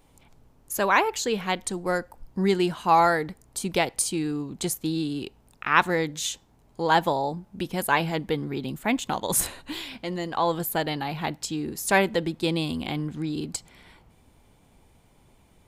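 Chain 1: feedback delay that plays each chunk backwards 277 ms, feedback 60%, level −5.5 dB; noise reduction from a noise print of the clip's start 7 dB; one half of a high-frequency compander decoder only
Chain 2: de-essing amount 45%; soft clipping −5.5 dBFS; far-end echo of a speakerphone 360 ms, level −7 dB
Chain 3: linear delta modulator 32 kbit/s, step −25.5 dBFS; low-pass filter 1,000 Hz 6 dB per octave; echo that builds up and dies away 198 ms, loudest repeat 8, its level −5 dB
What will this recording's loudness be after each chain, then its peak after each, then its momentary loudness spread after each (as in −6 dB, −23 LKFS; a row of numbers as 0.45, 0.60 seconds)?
−25.0, −26.5, −22.0 LKFS; −3.0, −7.0, −5.5 dBFS; 10, 11, 5 LU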